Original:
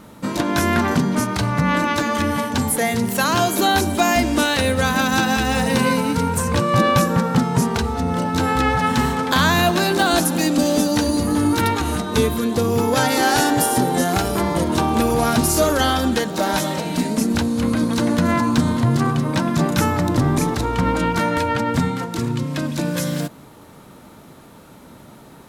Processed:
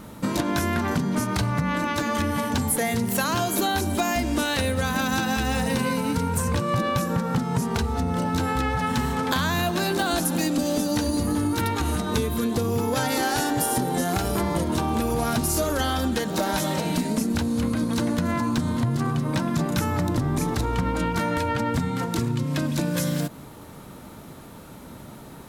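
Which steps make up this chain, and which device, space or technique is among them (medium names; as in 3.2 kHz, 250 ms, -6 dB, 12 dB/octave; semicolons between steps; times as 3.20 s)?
ASMR close-microphone chain (bass shelf 120 Hz +6 dB; compression, threshold -21 dBFS, peak gain reduction 11 dB; treble shelf 11 kHz +5 dB)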